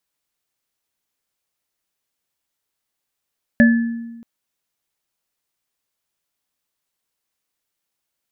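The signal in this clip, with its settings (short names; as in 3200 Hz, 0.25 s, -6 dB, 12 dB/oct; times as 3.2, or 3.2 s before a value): sine partials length 0.63 s, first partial 232 Hz, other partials 582/1730 Hz, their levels -8.5/-6.5 dB, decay 1.22 s, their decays 0.23/0.66 s, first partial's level -7 dB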